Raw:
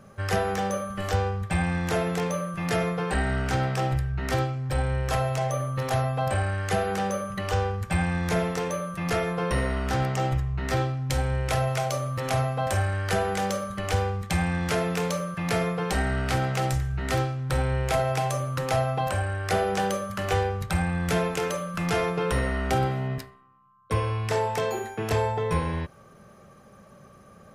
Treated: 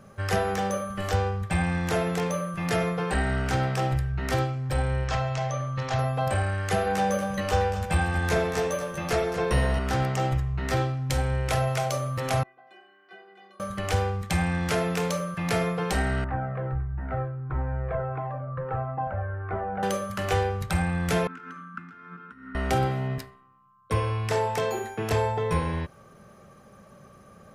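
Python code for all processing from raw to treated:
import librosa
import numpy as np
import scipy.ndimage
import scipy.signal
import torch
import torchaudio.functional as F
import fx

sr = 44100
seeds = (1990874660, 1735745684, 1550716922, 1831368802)

y = fx.chain(x, sr, fx.lowpass(hz=6700.0, slope=24),
    fx.peak_eq(hz=390.0, db=-6.0, octaves=1.5), at=(5.04, 5.99))
y = fx.chain(y, sr, fx.doubler(ms=14.0, db=-4),
    fx.echo_single(ms=234, db=-10.0), at=(6.85, 9.79))
y = fx.chain(y, sr, fx.brickwall_highpass(low_hz=150.0),
    fx.air_absorb(metres=360.0),
    fx.stiff_resonator(f0_hz=360.0, decay_s=0.37, stiffness=0.008), at=(12.43, 13.6))
y = fx.chain(y, sr, fx.lowpass(hz=1600.0, slope=24),
    fx.comb_cascade(direction='falling', hz=1.5), at=(16.24, 19.83))
y = fx.chain(y, sr, fx.over_compress(threshold_db=-29.0, ratio=-0.5),
    fx.double_bandpass(hz=590.0, octaves=2.5), at=(21.27, 22.55))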